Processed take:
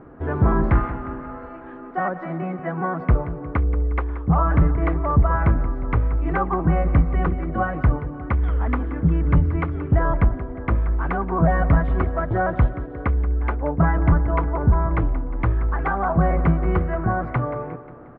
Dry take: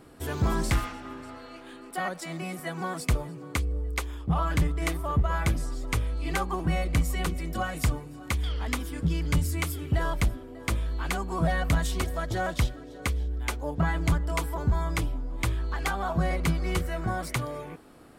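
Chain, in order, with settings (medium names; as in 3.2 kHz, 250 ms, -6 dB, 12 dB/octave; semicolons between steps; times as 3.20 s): low-pass 1.6 kHz 24 dB/octave; feedback delay 179 ms, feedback 52%, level -14 dB; trim +8 dB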